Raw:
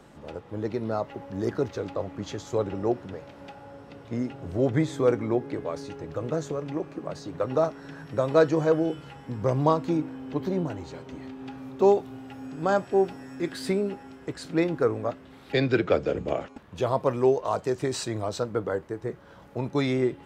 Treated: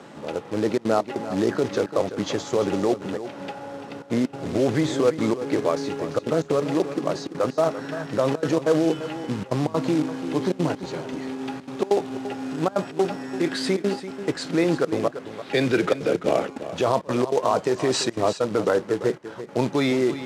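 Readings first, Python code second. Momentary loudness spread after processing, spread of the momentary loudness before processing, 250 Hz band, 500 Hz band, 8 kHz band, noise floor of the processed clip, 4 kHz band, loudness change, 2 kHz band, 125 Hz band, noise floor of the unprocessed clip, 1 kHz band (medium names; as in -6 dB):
10 LU, 17 LU, +4.5 dB, +3.0 dB, no reading, -42 dBFS, +8.0 dB, +3.0 dB, +4.5 dB, +0.5 dB, -50 dBFS, +3.5 dB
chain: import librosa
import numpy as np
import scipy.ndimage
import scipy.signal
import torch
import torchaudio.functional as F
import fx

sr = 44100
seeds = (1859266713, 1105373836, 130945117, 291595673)

p1 = fx.over_compress(x, sr, threshold_db=-28.0, ratio=-0.5)
p2 = x + (p1 * 10.0 ** (0.0 / 20.0))
p3 = fx.step_gate(p2, sr, bpm=194, pattern='xxxxxxxxxx.xx.', floor_db=-24.0, edge_ms=4.5)
p4 = fx.quant_float(p3, sr, bits=2)
p5 = fx.bandpass_edges(p4, sr, low_hz=170.0, high_hz=7200.0)
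p6 = p5 + 10.0 ** (-12.5 / 20.0) * np.pad(p5, (int(340 * sr / 1000.0), 0))[:len(p5)]
y = p6 * 10.0 ** (1.5 / 20.0)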